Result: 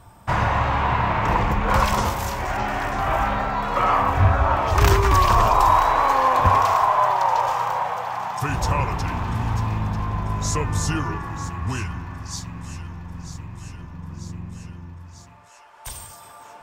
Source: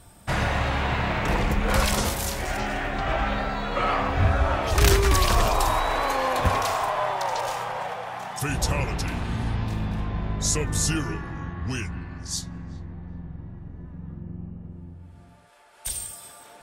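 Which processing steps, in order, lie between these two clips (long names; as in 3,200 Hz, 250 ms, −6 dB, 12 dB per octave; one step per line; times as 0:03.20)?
graphic EQ with 15 bands 100 Hz +6 dB, 1,000 Hz +11 dB, 4,000 Hz −4 dB, 10,000 Hz −10 dB
delay with a high-pass on its return 942 ms, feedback 69%, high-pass 1,700 Hz, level −12.5 dB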